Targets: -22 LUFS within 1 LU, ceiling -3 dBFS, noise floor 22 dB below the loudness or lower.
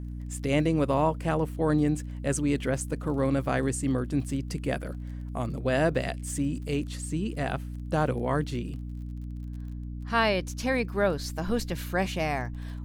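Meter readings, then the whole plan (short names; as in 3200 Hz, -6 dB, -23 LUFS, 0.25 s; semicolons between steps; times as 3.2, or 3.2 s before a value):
ticks 30/s; hum 60 Hz; harmonics up to 300 Hz; hum level -34 dBFS; loudness -29.0 LUFS; peak -12.0 dBFS; loudness target -22.0 LUFS
-> de-click; de-hum 60 Hz, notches 5; gain +7 dB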